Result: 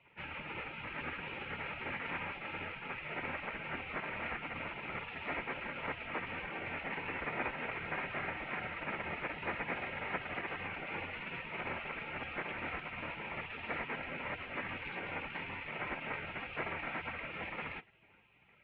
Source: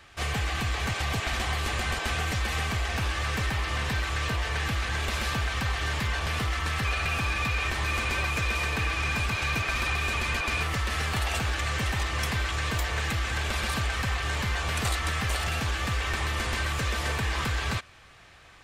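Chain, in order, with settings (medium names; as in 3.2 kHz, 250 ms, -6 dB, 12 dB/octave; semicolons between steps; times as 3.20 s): de-hum 315.5 Hz, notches 29; mistuned SSB -64 Hz 240–2100 Hz; spectral gate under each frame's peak -15 dB weak; trim +5.5 dB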